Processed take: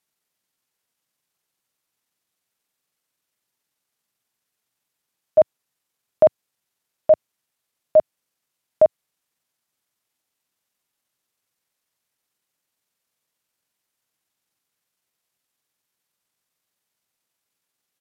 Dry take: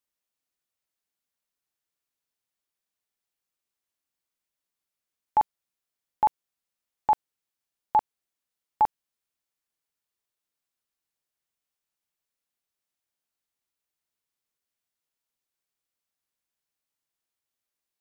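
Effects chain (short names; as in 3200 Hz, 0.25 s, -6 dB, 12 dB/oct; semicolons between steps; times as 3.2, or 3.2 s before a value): resonant low shelf 120 Hz -7 dB, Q 1.5; pitch shift -5.5 st; gain +8 dB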